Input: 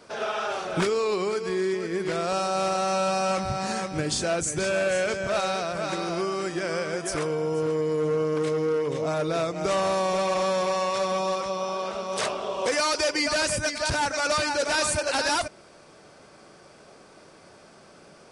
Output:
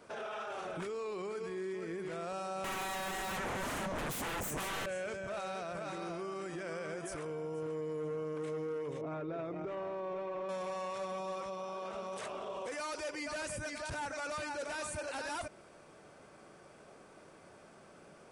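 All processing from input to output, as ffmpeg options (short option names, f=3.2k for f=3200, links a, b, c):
-filter_complex "[0:a]asettb=1/sr,asplit=3[a][b][c];[a]atrim=end=2.644[d];[b]atrim=start=2.64:end=4.86,asetpts=PTS-STARTPTS,afade=t=in:d=0.004:c=qsin,afade=t=out:st=2.216:d=0.004:c=qsin,equalizer=f=200:w=1.5:g=15,aeval=exprs='0.316*sin(PI/2*7.94*val(0)/0.316)':c=same[e];[c]atrim=start=4.856[f];[d][e]acrossfade=d=0.004:c1=hsin:c2=qsin[g];[g][f]acrossfade=d=0.004:c1=qsin:c2=hsin,asettb=1/sr,asplit=3[h][i][j];[h]atrim=end=9.014[k];[i]atrim=start=9.01:end=10.49,asetpts=PTS-STARTPTS,afade=t=in:d=0.004:c=qsin,afade=t=out:st=1.476:d=0.004:c=qsin,lowpass=2.4k,equalizer=f=350:t=o:w=0.53:g=9,aecho=1:1:7.3:0.32,atrim=end_sample=65268[l];[j]atrim=start=10.486[m];[k][l]acrossfade=d=0.004:c1=hsin:c2=qsin[n];[n][m]acrossfade=d=0.004:c1=qsin:c2=hsin,equalizer=f=4.8k:t=o:w=0.88:g=-8,alimiter=level_in=4dB:limit=-24dB:level=0:latency=1:release=47,volume=-4dB,volume=-5.5dB"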